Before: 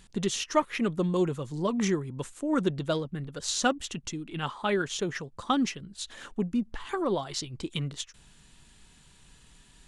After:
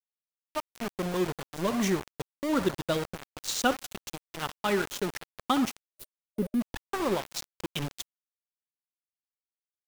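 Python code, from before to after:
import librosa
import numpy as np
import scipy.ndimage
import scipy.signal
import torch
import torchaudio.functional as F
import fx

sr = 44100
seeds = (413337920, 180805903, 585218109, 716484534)

p1 = fx.fade_in_head(x, sr, length_s=1.58)
p2 = p1 + fx.echo_banded(p1, sr, ms=64, feedback_pct=64, hz=990.0, wet_db=-10.5, dry=0)
p3 = np.where(np.abs(p2) >= 10.0 ** (-29.5 / 20.0), p2, 0.0)
y = fx.spec_box(p3, sr, start_s=5.88, length_s=0.73, low_hz=620.0, high_hz=8900.0, gain_db=-10)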